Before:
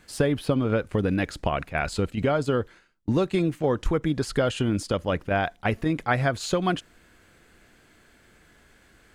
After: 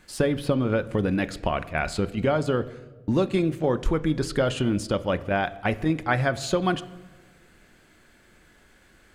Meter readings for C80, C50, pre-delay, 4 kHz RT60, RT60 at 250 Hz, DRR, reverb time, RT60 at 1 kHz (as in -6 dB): 18.5 dB, 17.0 dB, 3 ms, 0.85 s, 1.5 s, 11.5 dB, 1.3 s, 1.1 s